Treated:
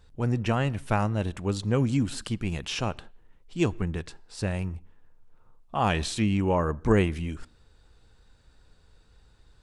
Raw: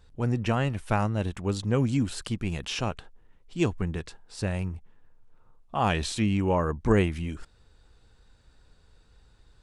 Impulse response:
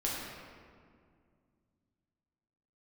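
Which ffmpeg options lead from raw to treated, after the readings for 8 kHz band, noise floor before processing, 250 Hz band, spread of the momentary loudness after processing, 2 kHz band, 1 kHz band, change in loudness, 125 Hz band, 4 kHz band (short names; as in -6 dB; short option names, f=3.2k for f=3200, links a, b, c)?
+0.5 dB, -60 dBFS, +0.5 dB, 12 LU, +0.5 dB, +0.5 dB, +0.5 dB, +0.5 dB, +0.5 dB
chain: -filter_complex "[0:a]asplit=2[a][b];[1:a]atrim=start_sample=2205,afade=t=out:st=0.27:d=0.01,atrim=end_sample=12348,asetrate=48510,aresample=44100[c];[b][c]afir=irnorm=-1:irlink=0,volume=-26.5dB[d];[a][d]amix=inputs=2:normalize=0"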